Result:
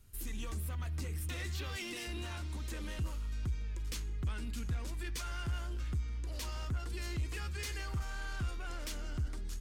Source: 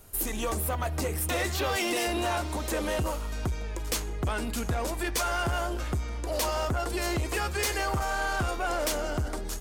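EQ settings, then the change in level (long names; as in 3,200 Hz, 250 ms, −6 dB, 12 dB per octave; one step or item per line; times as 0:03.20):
guitar amp tone stack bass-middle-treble 6-0-2
high-shelf EQ 6,500 Hz −12 dB
+8.0 dB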